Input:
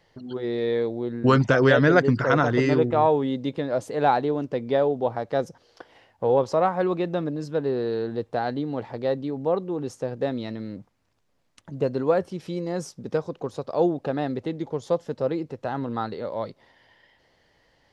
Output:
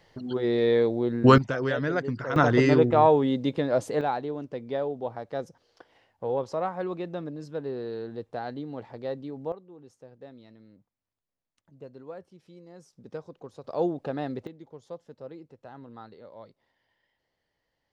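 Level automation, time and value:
+2.5 dB
from 0:01.38 −10 dB
from 0:02.36 +1 dB
from 0:04.01 −8 dB
from 0:09.52 −20 dB
from 0:12.93 −12.5 dB
from 0:13.64 −5 dB
from 0:14.47 −16.5 dB

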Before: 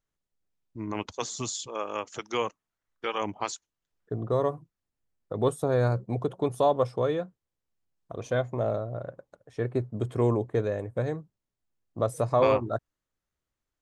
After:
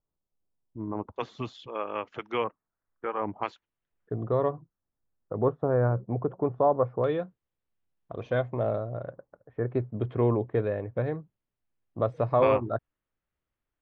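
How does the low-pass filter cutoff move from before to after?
low-pass filter 24 dB per octave
1,100 Hz
from 0:01.16 2,900 Hz
from 0:02.44 1,700 Hz
from 0:03.43 2,900 Hz
from 0:04.52 1,600 Hz
from 0:07.04 3,400 Hz
from 0:09.12 1,700 Hz
from 0:09.71 3,100 Hz

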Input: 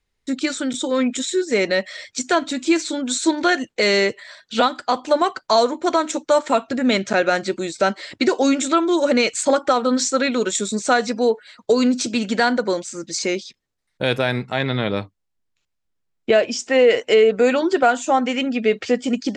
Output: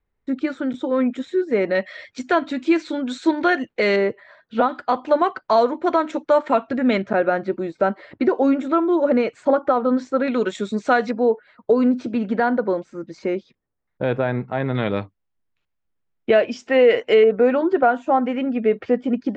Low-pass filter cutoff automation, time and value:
1,500 Hz
from 0:01.75 2,400 Hz
from 0:03.96 1,300 Hz
from 0:04.69 2,200 Hz
from 0:07.02 1,300 Hz
from 0:10.28 2,400 Hz
from 0:11.11 1,300 Hz
from 0:14.75 2,600 Hz
from 0:17.24 1,400 Hz

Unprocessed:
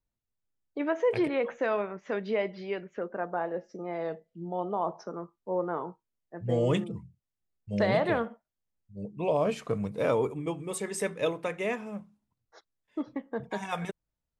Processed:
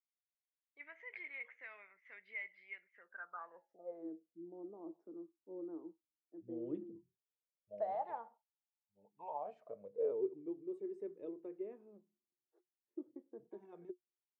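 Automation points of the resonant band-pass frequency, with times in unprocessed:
resonant band-pass, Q 16
0:02.92 2,100 Hz
0:03.73 810 Hz
0:04.06 320 Hz
0:06.92 320 Hz
0:08.11 870 Hz
0:09.32 870 Hz
0:10.28 360 Hz

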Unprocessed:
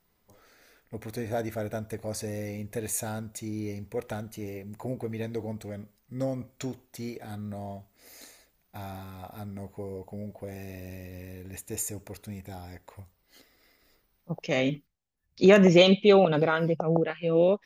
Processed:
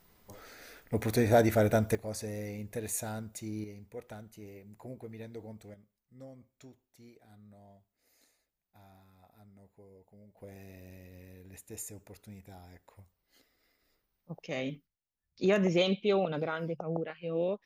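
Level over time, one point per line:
+7.5 dB
from 0:01.95 −4 dB
from 0:03.64 −11 dB
from 0:05.74 −19 dB
from 0:10.37 −9.5 dB

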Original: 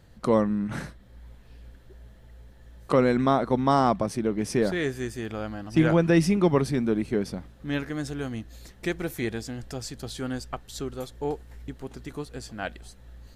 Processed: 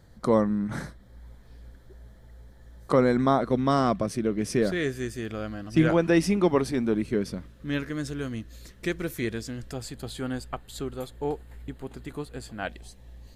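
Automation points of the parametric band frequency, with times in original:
parametric band −13 dB 0.27 octaves
2,700 Hz
from 0:03.41 860 Hz
from 0:05.89 150 Hz
from 0:06.94 780 Hz
from 0:09.71 5,700 Hz
from 0:12.69 1,400 Hz

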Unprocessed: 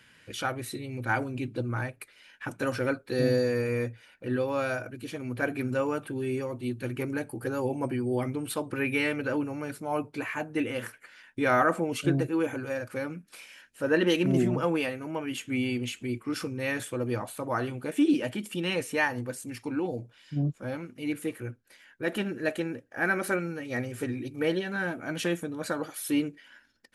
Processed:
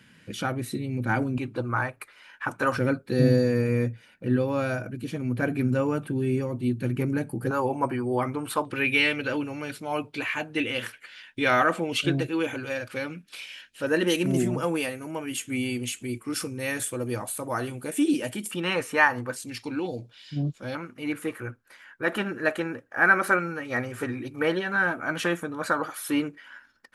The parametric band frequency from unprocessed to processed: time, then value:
parametric band +12 dB 1.3 octaves
190 Hz
from 0:01.38 1,100 Hz
from 0:02.77 170 Hz
from 0:07.51 1,100 Hz
from 0:08.65 3,300 Hz
from 0:13.87 9,500 Hz
from 0:18.51 1,200 Hz
from 0:19.36 4,000 Hz
from 0:20.75 1,200 Hz

